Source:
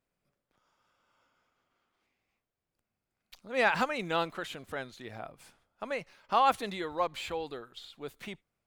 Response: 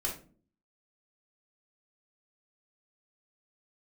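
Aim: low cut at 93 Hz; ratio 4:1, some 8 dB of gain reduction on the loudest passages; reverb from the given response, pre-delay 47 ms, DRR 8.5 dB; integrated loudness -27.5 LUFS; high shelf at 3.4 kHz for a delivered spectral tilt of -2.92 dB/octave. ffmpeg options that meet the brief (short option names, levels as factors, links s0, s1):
-filter_complex "[0:a]highpass=93,highshelf=f=3400:g=-8,acompressor=threshold=0.0316:ratio=4,asplit=2[s0][s1];[1:a]atrim=start_sample=2205,adelay=47[s2];[s1][s2]afir=irnorm=-1:irlink=0,volume=0.251[s3];[s0][s3]amix=inputs=2:normalize=0,volume=3.35"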